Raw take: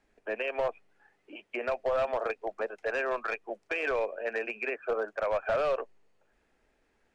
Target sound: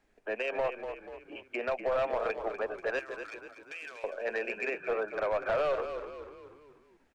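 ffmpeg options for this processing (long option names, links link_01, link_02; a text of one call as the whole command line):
ffmpeg -i in.wav -filter_complex "[0:a]asettb=1/sr,asplit=3[link_01][link_02][link_03];[link_01]atrim=end=2.994[link_04];[link_02]atrim=start=2.99:end=4.04,asetpts=PTS-STARTPTS,afade=type=in:duration=0.004:curve=qsin,afade=type=out:start_time=1.046:duration=0.004:curve=qsin,aderivative[link_05];[link_03]atrim=start=4.036[link_06];[link_04][link_05]acrossfade=duration=0.004:curve1=hsin:curve2=qsin[link_07];[link_07][link_06]acrossfade=duration=0.004:curve1=qsin:curve2=hsin,asplit=6[link_08][link_09][link_10][link_11][link_12][link_13];[link_09]adelay=243,afreqshift=-37,volume=-9.5dB[link_14];[link_10]adelay=486,afreqshift=-74,volume=-16.1dB[link_15];[link_11]adelay=729,afreqshift=-111,volume=-22.6dB[link_16];[link_12]adelay=972,afreqshift=-148,volume=-29.2dB[link_17];[link_13]adelay=1215,afreqshift=-185,volume=-35.7dB[link_18];[link_08][link_14][link_15][link_16][link_17][link_18]amix=inputs=6:normalize=0,asoftclip=type=tanh:threshold=-21.5dB" out.wav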